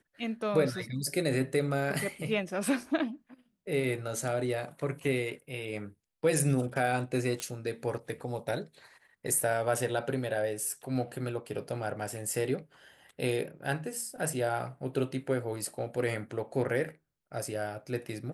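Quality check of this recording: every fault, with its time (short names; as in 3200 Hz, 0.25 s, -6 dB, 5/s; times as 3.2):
7.4 pop -19 dBFS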